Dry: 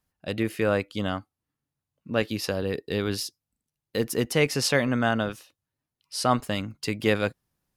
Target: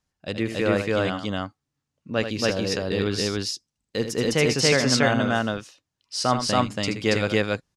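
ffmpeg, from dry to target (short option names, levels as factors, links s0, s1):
-af "lowpass=f=6700:t=q:w=1.6,aecho=1:1:78.72|279.9:0.355|1"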